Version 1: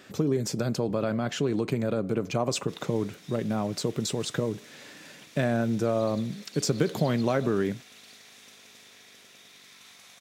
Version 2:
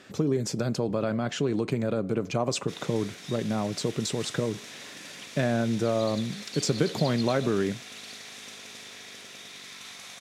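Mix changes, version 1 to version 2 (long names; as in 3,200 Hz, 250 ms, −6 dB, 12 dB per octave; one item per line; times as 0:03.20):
background +8.5 dB
master: add low-pass filter 11,000 Hz 12 dB per octave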